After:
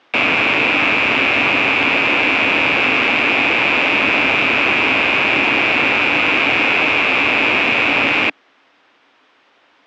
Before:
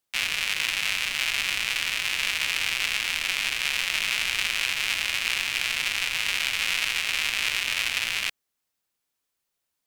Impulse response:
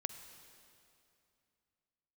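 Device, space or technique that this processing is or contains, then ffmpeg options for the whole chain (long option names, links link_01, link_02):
overdrive pedal into a guitar cabinet: -filter_complex "[0:a]asplit=2[link_01][link_02];[link_02]highpass=frequency=720:poles=1,volume=37dB,asoftclip=type=tanh:threshold=-7dB[link_03];[link_01][link_03]amix=inputs=2:normalize=0,lowpass=frequency=1400:poles=1,volume=-6dB,highpass=100,equalizer=frequency=170:width_type=q:width=4:gain=-7,equalizer=frequency=280:width_type=q:width=4:gain=8,equalizer=frequency=4300:width_type=q:width=4:gain=-6,lowpass=frequency=4300:width=0.5412,lowpass=frequency=4300:width=1.3066,volume=8dB"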